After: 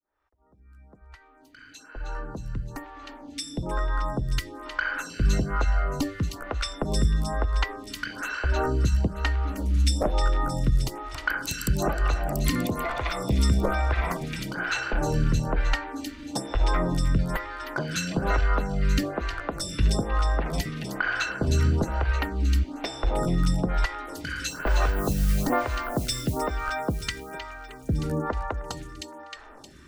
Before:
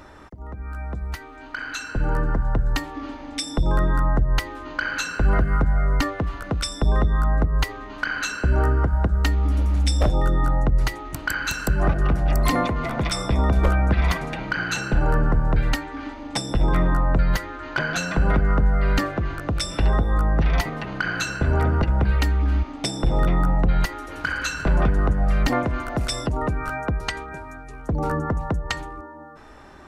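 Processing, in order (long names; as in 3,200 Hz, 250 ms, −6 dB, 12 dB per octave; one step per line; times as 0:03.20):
fade in at the beginning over 5.73 s
0:24.49–0:26.42: noise that follows the level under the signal 22 dB
delay with a high-pass on its return 311 ms, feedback 63%, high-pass 2,800 Hz, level −4 dB
phaser with staggered stages 1.1 Hz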